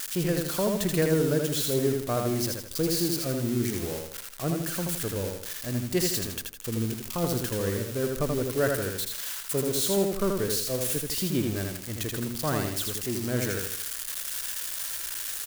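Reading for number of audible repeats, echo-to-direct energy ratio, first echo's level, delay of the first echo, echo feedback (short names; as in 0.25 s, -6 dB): 4, -3.0 dB, -3.5 dB, 81 ms, 39%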